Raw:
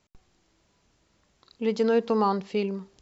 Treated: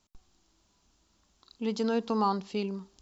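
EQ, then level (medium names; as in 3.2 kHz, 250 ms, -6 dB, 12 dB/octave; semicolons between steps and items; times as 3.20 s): ten-band graphic EQ 125 Hz -11 dB, 500 Hz -10 dB, 2 kHz -10 dB; +2.0 dB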